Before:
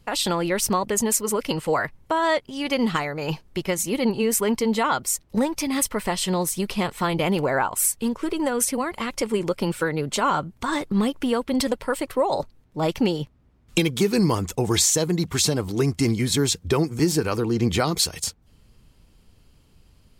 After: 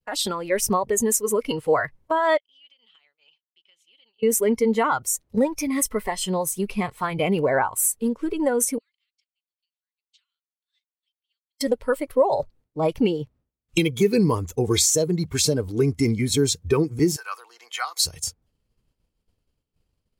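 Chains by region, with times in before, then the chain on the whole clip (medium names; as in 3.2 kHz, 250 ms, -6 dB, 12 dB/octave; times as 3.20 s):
2.37–4.23 s: band-pass filter 3.1 kHz, Q 8.7 + compression 20:1, threshold -42 dBFS
8.78–11.61 s: inverse Chebyshev high-pass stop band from 790 Hz, stop band 70 dB + tape spacing loss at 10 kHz 39 dB
17.16–18.05 s: high-pass 820 Hz 24 dB/octave + band-stop 2.4 kHz, Q 17
whole clip: expander -46 dBFS; spectral noise reduction 11 dB; peaking EQ 500 Hz +4.5 dB 0.87 oct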